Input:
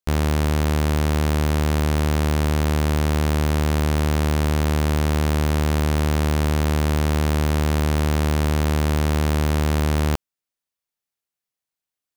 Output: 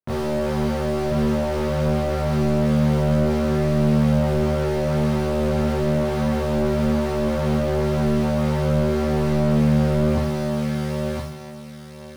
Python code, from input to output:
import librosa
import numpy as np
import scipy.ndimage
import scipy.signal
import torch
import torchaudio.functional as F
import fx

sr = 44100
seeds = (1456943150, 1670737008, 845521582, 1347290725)

y = scipy.signal.sosfilt(scipy.signal.butter(2, 1200.0, 'lowpass', fs=sr, output='sos'), x)
y = (np.mod(10.0 ** (19.0 / 20.0) * y + 1.0, 2.0) - 1.0) / 10.0 ** (19.0 / 20.0)
y = fx.chorus_voices(y, sr, voices=2, hz=0.8, base_ms=23, depth_ms=1.7, mix_pct=65)
y = fx.doubler(y, sr, ms=17.0, db=-13)
y = fx.echo_feedback(y, sr, ms=1018, feedback_pct=18, wet_db=-6)
y = fx.rev_plate(y, sr, seeds[0], rt60_s=0.98, hf_ratio=0.8, predelay_ms=0, drr_db=4.0)
y = fx.slew_limit(y, sr, full_power_hz=29.0)
y = F.gain(torch.from_numpy(y), 5.5).numpy()